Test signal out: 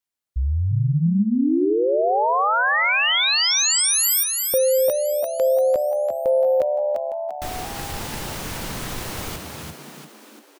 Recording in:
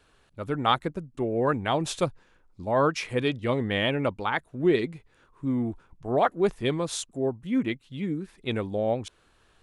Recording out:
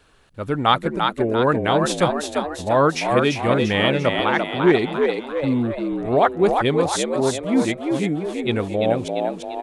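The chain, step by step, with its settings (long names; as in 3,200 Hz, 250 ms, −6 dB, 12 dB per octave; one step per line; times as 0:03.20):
echo with shifted repeats 344 ms, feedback 52%, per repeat +71 Hz, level −4.5 dB
level +6 dB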